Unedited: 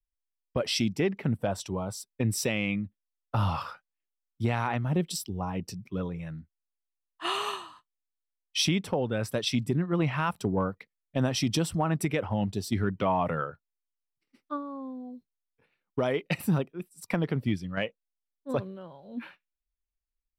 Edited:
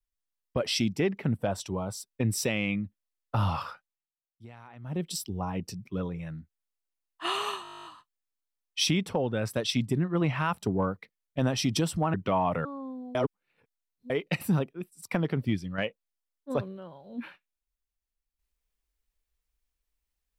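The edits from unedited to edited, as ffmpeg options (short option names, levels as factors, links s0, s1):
-filter_complex "[0:a]asplit=18[s0][s1][s2][s3][s4][s5][s6][s7][s8][s9][s10][s11][s12][s13][s14][s15][s16][s17];[s0]atrim=end=4.12,asetpts=PTS-STARTPTS,afade=t=out:st=3.7:d=0.42:silence=0.0944061[s18];[s1]atrim=start=4.12:end=4.76,asetpts=PTS-STARTPTS,volume=0.0944[s19];[s2]atrim=start=4.76:end=7.652,asetpts=PTS-STARTPTS,afade=t=in:d=0.42:silence=0.0944061[s20];[s3]atrim=start=7.628:end=7.652[s21];[s4]atrim=start=7.628:end=7.652[s22];[s5]atrim=start=7.628:end=7.652[s23];[s6]atrim=start=7.628:end=7.652[s24];[s7]atrim=start=7.628:end=7.652[s25];[s8]atrim=start=7.628:end=7.652[s26];[s9]atrim=start=7.628:end=7.652[s27];[s10]atrim=start=7.628:end=7.652[s28];[s11]atrim=start=7.628:end=7.652[s29];[s12]atrim=start=7.628:end=7.652[s30];[s13]atrim=start=7.628:end=11.922[s31];[s14]atrim=start=12.878:end=13.392[s32];[s15]atrim=start=14.638:end=15.142[s33];[s16]atrim=start=15.138:end=16.092,asetpts=PTS-STARTPTS,areverse[s34];[s17]atrim=start=16.088[s35];[s18][s19][s20]concat=n=3:v=0:a=1[s36];[s36][s21]acrossfade=d=0.004:c1=hsin:c2=hsin[s37];[s37][s22]acrossfade=d=0.004:c1=hsin:c2=hsin[s38];[s38][s23]acrossfade=d=0.004:c1=hsin:c2=hsin[s39];[s39][s24]acrossfade=d=0.004:c1=hsin:c2=hsin[s40];[s40][s25]acrossfade=d=0.004:c1=hsin:c2=hsin[s41];[s41][s26]acrossfade=d=0.004:c1=hsin:c2=hsin[s42];[s42][s27]acrossfade=d=0.004:c1=hsin:c2=hsin[s43];[s43][s28]acrossfade=d=0.004:c1=hsin:c2=hsin[s44];[s44][s29]acrossfade=d=0.004:c1=hsin:c2=hsin[s45];[s45][s30]acrossfade=d=0.004:c1=hsin:c2=hsin[s46];[s46][s31]acrossfade=d=0.004:c1=hsin:c2=hsin[s47];[s47][s32]acrossfade=d=0.004:c1=hsin:c2=hsin[s48];[s48][s33]acrossfade=d=0.004:c1=hsin:c2=hsin[s49];[s49][s34]acrossfade=d=0.004:c1=hsin:c2=hsin[s50];[s50][s35]acrossfade=d=0.004:c1=hsin:c2=hsin"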